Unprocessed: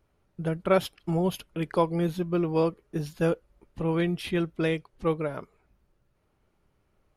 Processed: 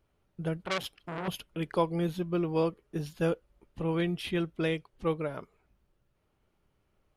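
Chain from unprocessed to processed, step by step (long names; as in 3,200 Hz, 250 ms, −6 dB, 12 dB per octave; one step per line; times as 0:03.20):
parametric band 3,100 Hz +3.5 dB 0.52 octaves
0:00.63–0:01.28: saturating transformer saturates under 2,800 Hz
level −3.5 dB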